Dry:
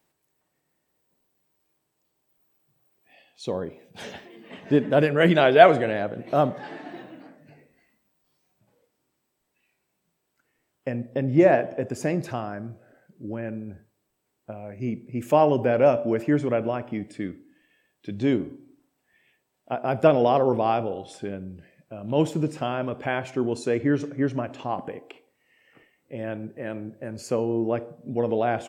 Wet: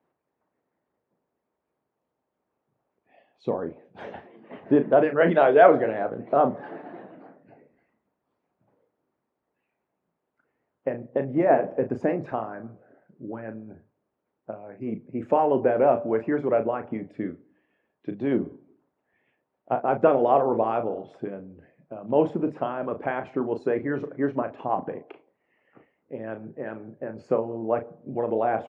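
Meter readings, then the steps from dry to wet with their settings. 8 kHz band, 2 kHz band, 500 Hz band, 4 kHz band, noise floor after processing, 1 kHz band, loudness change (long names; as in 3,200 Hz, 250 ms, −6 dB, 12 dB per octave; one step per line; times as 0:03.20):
can't be measured, −3.5 dB, 0.0 dB, below −10 dB, −81 dBFS, +0.5 dB, −0.5 dB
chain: in parallel at +0.5 dB: brickwall limiter −10 dBFS, peak gain reduction 8.5 dB
on the sum: high-pass filter 90 Hz
harmonic and percussive parts rebalanced harmonic −12 dB
low-pass filter 1,200 Hz 12 dB per octave
low-shelf EQ 420 Hz −3 dB
mains-hum notches 50/100/150 Hz
double-tracking delay 36 ms −9 dB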